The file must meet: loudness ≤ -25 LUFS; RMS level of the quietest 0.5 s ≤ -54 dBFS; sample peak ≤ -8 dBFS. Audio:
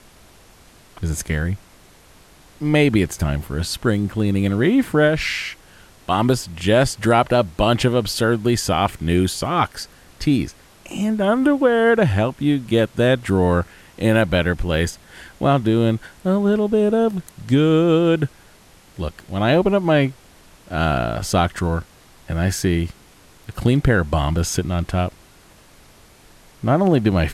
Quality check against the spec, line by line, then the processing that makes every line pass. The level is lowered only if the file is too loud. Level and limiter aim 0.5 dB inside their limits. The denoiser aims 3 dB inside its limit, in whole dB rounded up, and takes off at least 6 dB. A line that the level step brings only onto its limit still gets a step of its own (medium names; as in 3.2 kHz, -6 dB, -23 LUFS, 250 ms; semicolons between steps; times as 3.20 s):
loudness -19.5 LUFS: fail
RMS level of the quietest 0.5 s -49 dBFS: fail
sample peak -3.0 dBFS: fail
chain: trim -6 dB